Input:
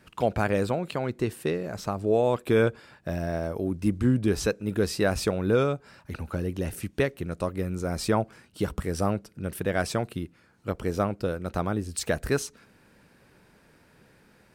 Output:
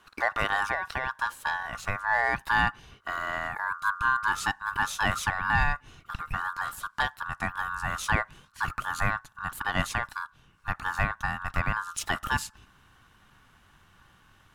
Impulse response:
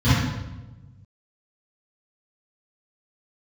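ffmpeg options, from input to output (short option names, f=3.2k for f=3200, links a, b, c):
-af "aeval=exprs='val(0)*sin(2*PI*1300*n/s)':c=same,aeval=exprs='0.282*(cos(1*acos(clip(val(0)/0.282,-1,1)))-cos(1*PI/2))+0.00708*(cos(5*acos(clip(val(0)/0.282,-1,1)))-cos(5*PI/2))':c=same,asubboost=boost=6.5:cutoff=160"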